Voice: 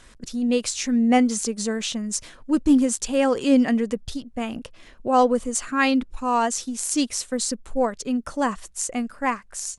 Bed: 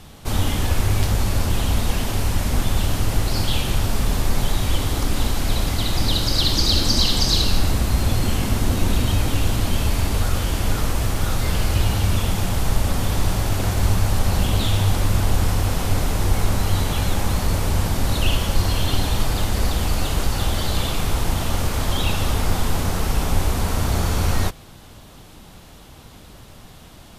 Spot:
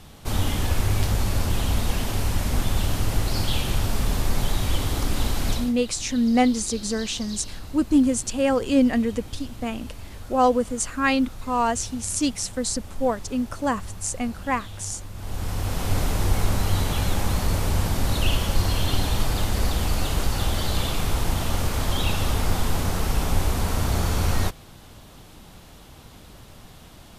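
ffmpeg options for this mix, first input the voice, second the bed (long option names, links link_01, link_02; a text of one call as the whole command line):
ffmpeg -i stem1.wav -i stem2.wav -filter_complex "[0:a]adelay=5250,volume=-1dB[link_01];[1:a]volume=13.5dB,afade=type=out:start_time=5.49:duration=0.24:silence=0.158489,afade=type=in:start_time=15.15:duration=0.84:silence=0.149624[link_02];[link_01][link_02]amix=inputs=2:normalize=0" out.wav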